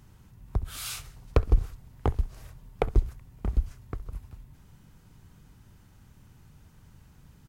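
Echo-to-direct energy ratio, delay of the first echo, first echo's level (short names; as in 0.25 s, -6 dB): -21.5 dB, 66 ms, -22.0 dB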